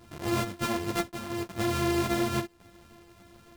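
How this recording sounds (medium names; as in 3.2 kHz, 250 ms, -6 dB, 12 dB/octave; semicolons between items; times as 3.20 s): a buzz of ramps at a fixed pitch in blocks of 128 samples; chopped level 0.77 Hz, depth 60%, duty 85%; a shimmering, thickened sound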